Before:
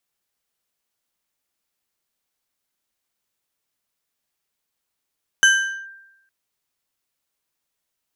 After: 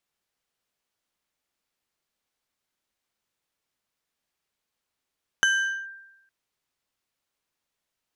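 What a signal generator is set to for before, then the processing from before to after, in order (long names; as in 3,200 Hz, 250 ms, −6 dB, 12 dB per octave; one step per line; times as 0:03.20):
two-operator FM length 0.86 s, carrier 1,580 Hz, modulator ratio 2.9, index 0.85, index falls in 0.44 s linear, decay 0.93 s, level −8 dB
high-shelf EQ 7,700 Hz −9.5 dB
downward compressor, threshold −20 dBFS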